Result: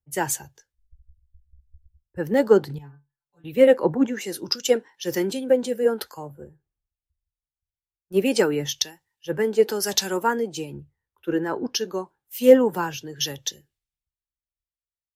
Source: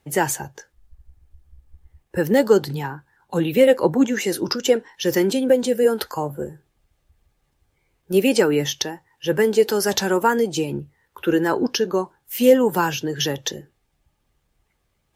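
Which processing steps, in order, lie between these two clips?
2.78–3.44 metallic resonator 140 Hz, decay 0.24 s, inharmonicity 0.002; three-band expander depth 100%; gain -5.5 dB

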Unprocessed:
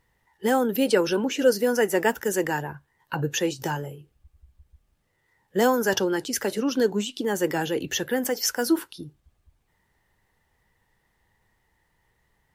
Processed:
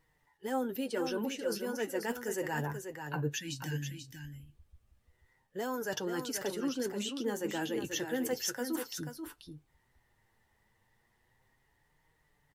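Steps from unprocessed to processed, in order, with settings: vibrato 6.4 Hz 11 cents; reverse; compressor 6:1, threshold -28 dBFS, peak gain reduction 14 dB; reverse; spectral gain 3.35–4.07, 340–1500 Hz -24 dB; flange 0.33 Hz, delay 6.3 ms, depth 3.1 ms, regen +40%; echo 0.486 s -7.5 dB

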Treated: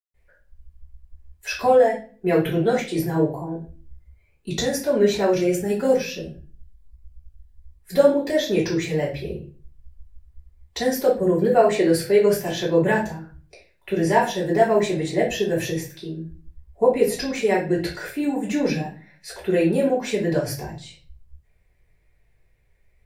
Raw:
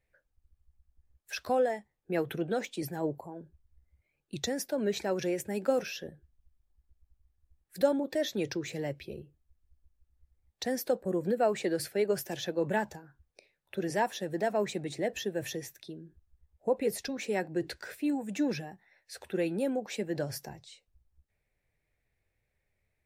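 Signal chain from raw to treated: reverb RT60 0.40 s, pre-delay 0.142 s; 5.35–7.81 cascading phaser rising 1.2 Hz; gain +1.5 dB

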